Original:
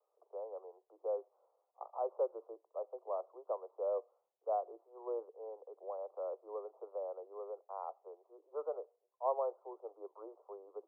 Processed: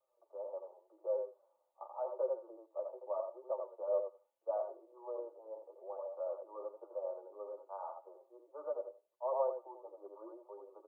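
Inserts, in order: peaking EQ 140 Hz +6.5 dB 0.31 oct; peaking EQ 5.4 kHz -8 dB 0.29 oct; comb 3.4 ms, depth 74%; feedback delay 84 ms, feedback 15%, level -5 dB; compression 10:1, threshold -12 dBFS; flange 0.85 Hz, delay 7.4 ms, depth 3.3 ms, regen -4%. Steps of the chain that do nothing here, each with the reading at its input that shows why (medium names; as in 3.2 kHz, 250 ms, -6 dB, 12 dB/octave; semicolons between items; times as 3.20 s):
peaking EQ 140 Hz: input has nothing below 300 Hz; peaking EQ 5.4 kHz: input has nothing above 1.4 kHz; compression, threshold -12 dBFS: peak at its input -21.0 dBFS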